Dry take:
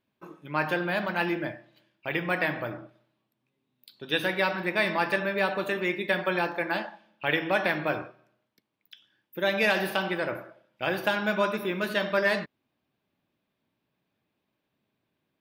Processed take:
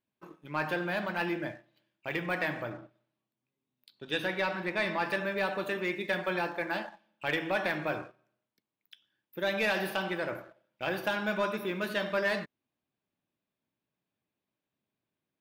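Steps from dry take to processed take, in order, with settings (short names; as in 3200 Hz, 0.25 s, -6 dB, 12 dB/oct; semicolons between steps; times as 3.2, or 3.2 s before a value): sample leveller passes 1; 2.63–5.05 high shelf 9200 Hz -9 dB; gain -7.5 dB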